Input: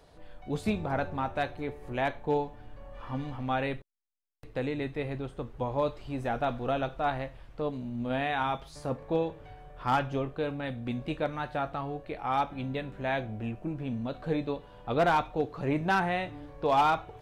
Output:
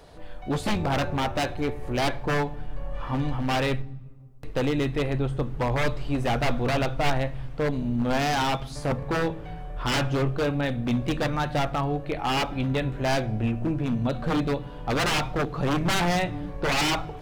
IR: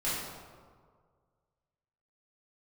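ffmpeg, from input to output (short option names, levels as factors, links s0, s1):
-filter_complex "[0:a]aeval=exprs='0.0422*(abs(mod(val(0)/0.0422+3,4)-2)-1)':c=same,asplit=2[s0][s1];[s1]asubboost=boost=11.5:cutoff=190[s2];[1:a]atrim=start_sample=2205[s3];[s2][s3]afir=irnorm=-1:irlink=0,volume=0.0316[s4];[s0][s4]amix=inputs=2:normalize=0,volume=2.51"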